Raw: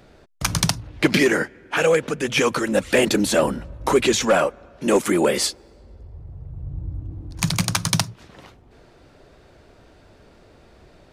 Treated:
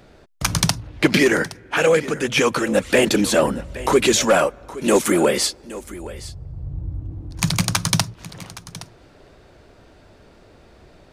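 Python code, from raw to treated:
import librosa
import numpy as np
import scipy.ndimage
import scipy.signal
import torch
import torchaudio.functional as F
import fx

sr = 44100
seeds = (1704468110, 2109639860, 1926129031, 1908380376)

y = fx.high_shelf(x, sr, hz=6900.0, db=6.5, at=(3.99, 5.25))
y = y + 10.0 ** (-17.0 / 20.0) * np.pad(y, (int(818 * sr / 1000.0), 0))[:len(y)]
y = y * librosa.db_to_amplitude(1.5)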